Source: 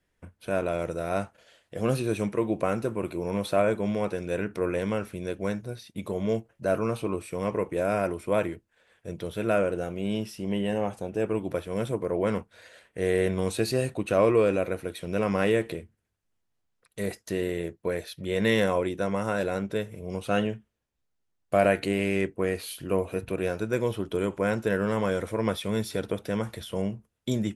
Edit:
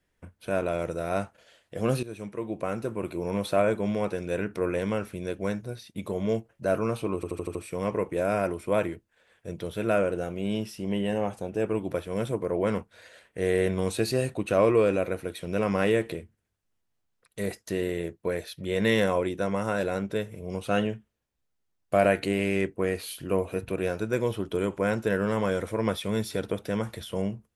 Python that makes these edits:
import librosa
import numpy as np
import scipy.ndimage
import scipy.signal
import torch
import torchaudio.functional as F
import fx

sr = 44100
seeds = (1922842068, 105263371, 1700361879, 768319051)

y = fx.edit(x, sr, fx.fade_in_from(start_s=2.03, length_s=1.21, floor_db=-14.0),
    fx.stutter(start_s=7.15, slice_s=0.08, count=6), tone=tone)